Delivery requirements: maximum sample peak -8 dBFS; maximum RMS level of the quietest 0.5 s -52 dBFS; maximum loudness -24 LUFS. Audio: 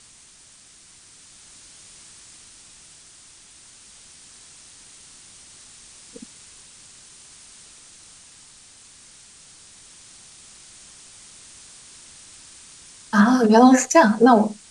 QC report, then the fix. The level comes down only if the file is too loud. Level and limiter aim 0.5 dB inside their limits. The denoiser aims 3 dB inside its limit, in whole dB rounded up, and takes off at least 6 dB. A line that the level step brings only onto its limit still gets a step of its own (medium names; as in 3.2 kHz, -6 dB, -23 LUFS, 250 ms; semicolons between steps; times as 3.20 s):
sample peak -3.0 dBFS: fail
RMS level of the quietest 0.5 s -50 dBFS: fail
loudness -15.5 LUFS: fail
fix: trim -9 dB